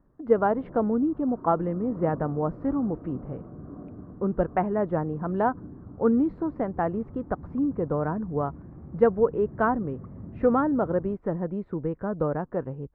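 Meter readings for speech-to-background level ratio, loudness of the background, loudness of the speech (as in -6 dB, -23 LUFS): 17.0 dB, -44.0 LUFS, -27.0 LUFS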